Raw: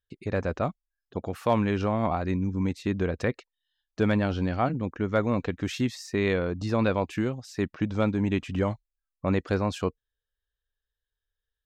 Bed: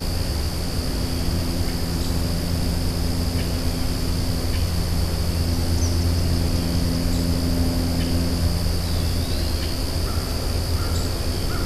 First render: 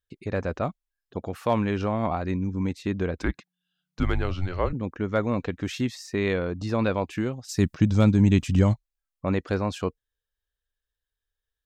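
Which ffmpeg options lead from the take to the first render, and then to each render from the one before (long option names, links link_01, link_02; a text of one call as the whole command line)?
ffmpeg -i in.wav -filter_complex "[0:a]asettb=1/sr,asplit=3[link_01][link_02][link_03];[link_01]atrim=end=3.184[link_04];[link_02]atrim=start=3.18:end=4.73,asetpts=PTS-STARTPTS,afade=type=in:duration=0.004:curve=qsin,afade=type=out:start_time=1.546:duration=0.004:curve=qsin,afreqshift=-180[link_05];[link_03]atrim=start=4.726[link_06];[link_04][link_05]acrossfade=duration=0.004:curve1=hsin:curve2=qsin[link_07];[link_07][link_06]acrossfade=duration=0.004:curve1=qsin:curve2=hsin,asplit=3[link_08][link_09][link_10];[link_08]afade=type=out:start_time=7.48:duration=0.02[link_11];[link_09]bass=frequency=250:gain=11,treble=frequency=4000:gain=14,afade=type=in:start_time=7.48:duration=0.02,afade=type=out:start_time=8.73:duration=0.02[link_12];[link_10]afade=type=in:start_time=8.73:duration=0.02[link_13];[link_11][link_12][link_13]amix=inputs=3:normalize=0" out.wav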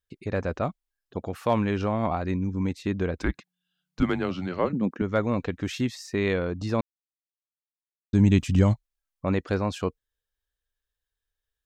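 ffmpeg -i in.wav -filter_complex "[0:a]asettb=1/sr,asplit=3[link_01][link_02][link_03];[link_01]atrim=end=4.024[link_04];[link_02]atrim=start=4.02:end=5.02,asetpts=PTS-STARTPTS,afade=type=in:duration=0.004:curve=qsin,afade=type=out:start_time=0.996:duration=0.004:curve=qsin,highpass=frequency=200:width_type=q:width=2.4[link_05];[link_03]atrim=start=5.016[link_06];[link_04][link_05]acrossfade=duration=0.004:curve1=hsin:curve2=qsin[link_07];[link_07][link_06]acrossfade=duration=0.004:curve1=qsin:curve2=hsin,asplit=3[link_08][link_09][link_10];[link_08]atrim=end=6.81,asetpts=PTS-STARTPTS,afade=type=out:start_time=6.806:duration=0.004:curve=hsin[link_11];[link_09]atrim=start=6.81:end=8.13,asetpts=PTS-STARTPTS,volume=0[link_12];[link_10]atrim=start=8.13,asetpts=PTS-STARTPTS,afade=type=in:duration=0.004:curve=hsin[link_13];[link_11][link_12][link_13]concat=n=3:v=0:a=1" out.wav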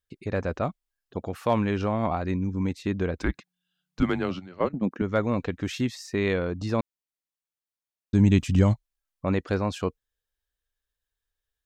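ffmpeg -i in.wav -filter_complex "[0:a]asplit=3[link_01][link_02][link_03];[link_01]afade=type=out:start_time=4.38:duration=0.02[link_04];[link_02]agate=range=-13dB:threshold=-27dB:ratio=16:release=100:detection=peak,afade=type=in:start_time=4.38:duration=0.02,afade=type=out:start_time=4.9:duration=0.02[link_05];[link_03]afade=type=in:start_time=4.9:duration=0.02[link_06];[link_04][link_05][link_06]amix=inputs=3:normalize=0" out.wav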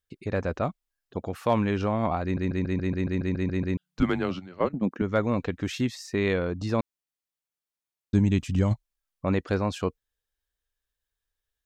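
ffmpeg -i in.wav -filter_complex "[0:a]asplit=14[link_01][link_02][link_03][link_04][link_05][link_06][link_07][link_08][link_09][link_10][link_11][link_12][link_13][link_14];[link_01]atrim=end=2.372[link_15];[link_02]atrim=start=2.228:end=2.372[link_16];[link_03]atrim=start=2.228:end=2.372[link_17];[link_04]atrim=start=2.228:end=2.372[link_18];[link_05]atrim=start=2.228:end=2.372[link_19];[link_06]atrim=start=2.228:end=2.372[link_20];[link_07]atrim=start=2.228:end=2.372[link_21];[link_08]atrim=start=2.228:end=2.372[link_22];[link_09]atrim=start=2.228:end=2.372[link_23];[link_10]atrim=start=2.228:end=2.372[link_24];[link_11]atrim=start=2.228:end=2.372[link_25];[link_12]atrim=start=3.768:end=8.192[link_26];[link_13]atrim=start=8.188:end=8.712,asetpts=PTS-STARTPTS,volume=-4dB[link_27];[link_14]atrim=start=8.708[link_28];[link_15][link_16]acrossfade=duration=0.004:curve1=hsin:curve2=hsin[link_29];[link_29][link_17]acrossfade=duration=0.004:curve1=hsin:curve2=hsin[link_30];[link_30][link_18]acrossfade=duration=0.004:curve1=hsin:curve2=hsin[link_31];[link_31][link_19]acrossfade=duration=0.004:curve1=hsin:curve2=hsin[link_32];[link_32][link_20]acrossfade=duration=0.004:curve1=hsin:curve2=hsin[link_33];[link_33][link_21]acrossfade=duration=0.004:curve1=hsin:curve2=hsin[link_34];[link_34][link_22]acrossfade=duration=0.004:curve1=hsin:curve2=hsin[link_35];[link_35][link_23]acrossfade=duration=0.004:curve1=hsin:curve2=hsin[link_36];[link_36][link_24]acrossfade=duration=0.004:curve1=hsin:curve2=hsin[link_37];[link_37][link_25]acrossfade=duration=0.004:curve1=hsin:curve2=hsin[link_38];[link_38][link_26]acrossfade=duration=0.004:curve1=hsin:curve2=hsin[link_39];[link_39][link_27]acrossfade=duration=0.004:curve1=hsin:curve2=hsin[link_40];[link_40][link_28]acrossfade=duration=0.004:curve1=hsin:curve2=hsin" out.wav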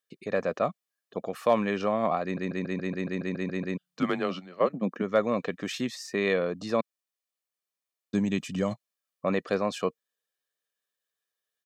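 ffmpeg -i in.wav -af "highpass=frequency=180:width=0.5412,highpass=frequency=180:width=1.3066,aecho=1:1:1.7:0.41" out.wav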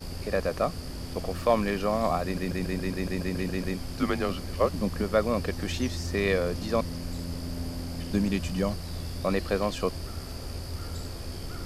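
ffmpeg -i in.wav -i bed.wav -filter_complex "[1:a]volume=-13dB[link_01];[0:a][link_01]amix=inputs=2:normalize=0" out.wav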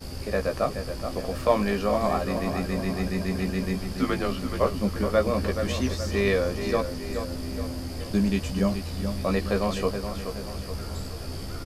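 ffmpeg -i in.wav -filter_complex "[0:a]asplit=2[link_01][link_02];[link_02]adelay=15,volume=-5dB[link_03];[link_01][link_03]amix=inputs=2:normalize=0,asplit=2[link_04][link_05];[link_05]adelay=425,lowpass=frequency=3900:poles=1,volume=-8dB,asplit=2[link_06][link_07];[link_07]adelay=425,lowpass=frequency=3900:poles=1,volume=0.52,asplit=2[link_08][link_09];[link_09]adelay=425,lowpass=frequency=3900:poles=1,volume=0.52,asplit=2[link_10][link_11];[link_11]adelay=425,lowpass=frequency=3900:poles=1,volume=0.52,asplit=2[link_12][link_13];[link_13]adelay=425,lowpass=frequency=3900:poles=1,volume=0.52,asplit=2[link_14][link_15];[link_15]adelay=425,lowpass=frequency=3900:poles=1,volume=0.52[link_16];[link_06][link_08][link_10][link_12][link_14][link_16]amix=inputs=6:normalize=0[link_17];[link_04][link_17]amix=inputs=2:normalize=0" out.wav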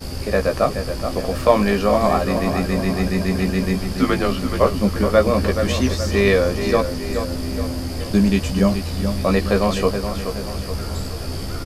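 ffmpeg -i in.wav -af "volume=7.5dB,alimiter=limit=-1dB:level=0:latency=1" out.wav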